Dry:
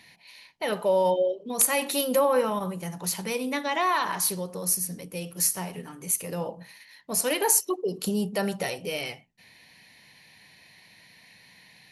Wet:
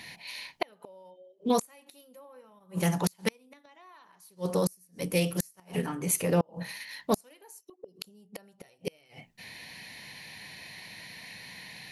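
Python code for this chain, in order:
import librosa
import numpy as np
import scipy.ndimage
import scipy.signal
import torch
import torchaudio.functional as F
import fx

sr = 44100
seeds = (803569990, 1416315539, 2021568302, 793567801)

y = fx.high_shelf(x, sr, hz=4000.0, db=-11.0, at=(5.86, 6.48))
y = fx.gate_flip(y, sr, shuts_db=-22.0, range_db=-38)
y = fx.doppler_dist(y, sr, depth_ms=0.12)
y = F.gain(torch.from_numpy(y), 8.5).numpy()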